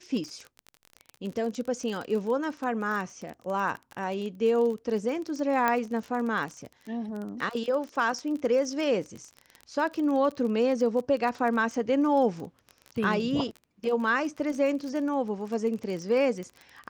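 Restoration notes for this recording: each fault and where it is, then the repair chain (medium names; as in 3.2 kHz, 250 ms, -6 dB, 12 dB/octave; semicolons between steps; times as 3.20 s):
crackle 27 per s -33 dBFS
5.68 s: pop -12 dBFS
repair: de-click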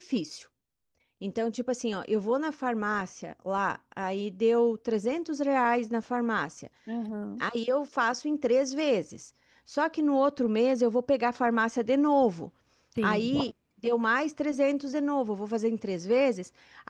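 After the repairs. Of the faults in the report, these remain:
nothing left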